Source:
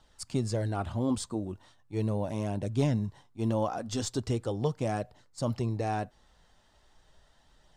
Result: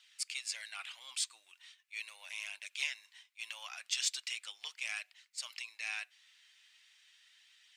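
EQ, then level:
four-pole ladder high-pass 2,100 Hz, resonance 60%
+13.0 dB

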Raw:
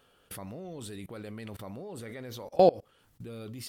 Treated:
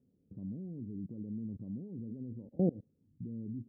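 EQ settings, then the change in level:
high-pass filter 81 Hz
transistor ladder low-pass 290 Hz, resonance 40%
+7.5 dB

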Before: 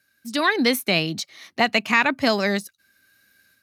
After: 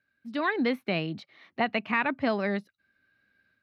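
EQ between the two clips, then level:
high-frequency loss of the air 400 metres
−5.0 dB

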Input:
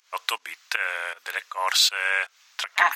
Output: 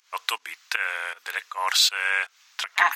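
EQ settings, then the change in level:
high-pass filter 180 Hz 6 dB per octave
parametric band 590 Hz −6 dB 0.33 octaves
0.0 dB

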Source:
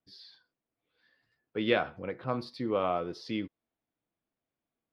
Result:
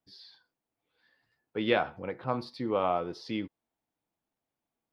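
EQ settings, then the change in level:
parametric band 860 Hz +6.5 dB 0.41 octaves
0.0 dB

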